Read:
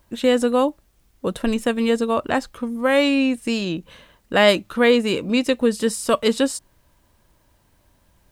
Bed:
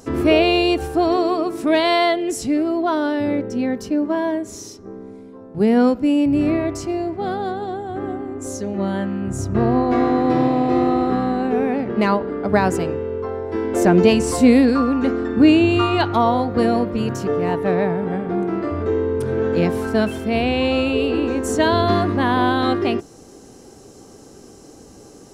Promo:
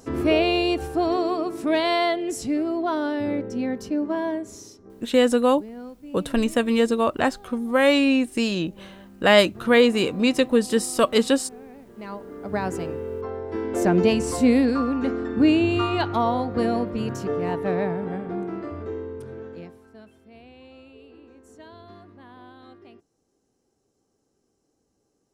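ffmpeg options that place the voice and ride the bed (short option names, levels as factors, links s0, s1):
-filter_complex "[0:a]adelay=4900,volume=0.944[s0];[1:a]volume=4.47,afade=t=out:st=4.32:d=0.98:silence=0.11885,afade=t=in:st=11.95:d=1.17:silence=0.125893,afade=t=out:st=17.88:d=1.91:silence=0.0668344[s1];[s0][s1]amix=inputs=2:normalize=0"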